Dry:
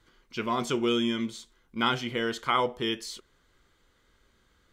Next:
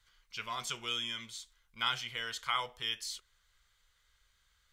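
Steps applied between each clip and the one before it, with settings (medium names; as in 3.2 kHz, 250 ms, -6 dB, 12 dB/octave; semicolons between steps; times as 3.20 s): amplifier tone stack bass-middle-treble 10-0-10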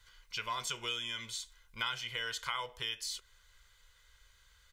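compression 2.5:1, threshold -44 dBFS, peak gain reduction 11.5 dB; comb 2 ms, depth 40%; trim +6 dB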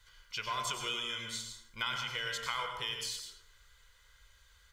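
plate-style reverb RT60 0.82 s, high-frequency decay 0.55×, pre-delay 85 ms, DRR 3 dB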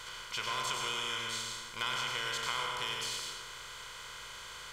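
spectral levelling over time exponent 0.4; trim -4 dB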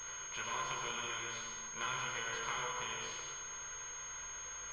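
chorus voices 4, 0.53 Hz, delay 17 ms, depth 3.7 ms; class-D stage that switches slowly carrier 6.5 kHz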